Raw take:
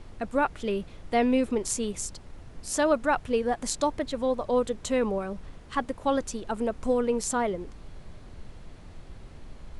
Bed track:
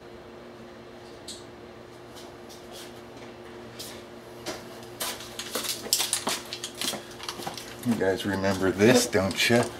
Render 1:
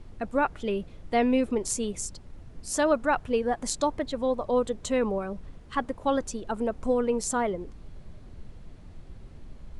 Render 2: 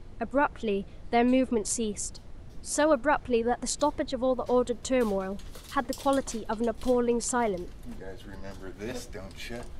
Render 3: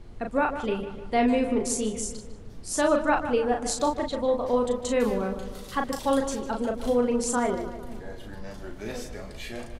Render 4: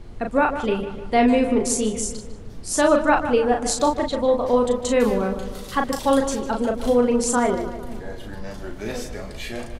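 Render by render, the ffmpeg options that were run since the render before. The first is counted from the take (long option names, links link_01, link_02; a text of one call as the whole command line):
ffmpeg -i in.wav -af "afftdn=noise_reduction=6:noise_floor=-47" out.wav
ffmpeg -i in.wav -i bed.wav -filter_complex "[1:a]volume=-18dB[link_01];[0:a][link_01]amix=inputs=2:normalize=0" out.wav
ffmpeg -i in.wav -filter_complex "[0:a]asplit=2[link_01][link_02];[link_02]adelay=37,volume=-4.5dB[link_03];[link_01][link_03]amix=inputs=2:normalize=0,asplit=2[link_04][link_05];[link_05]adelay=151,lowpass=frequency=3000:poles=1,volume=-10dB,asplit=2[link_06][link_07];[link_07]adelay=151,lowpass=frequency=3000:poles=1,volume=0.55,asplit=2[link_08][link_09];[link_09]adelay=151,lowpass=frequency=3000:poles=1,volume=0.55,asplit=2[link_10][link_11];[link_11]adelay=151,lowpass=frequency=3000:poles=1,volume=0.55,asplit=2[link_12][link_13];[link_13]adelay=151,lowpass=frequency=3000:poles=1,volume=0.55,asplit=2[link_14][link_15];[link_15]adelay=151,lowpass=frequency=3000:poles=1,volume=0.55[link_16];[link_04][link_06][link_08][link_10][link_12][link_14][link_16]amix=inputs=7:normalize=0" out.wav
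ffmpeg -i in.wav -af "volume=5.5dB" out.wav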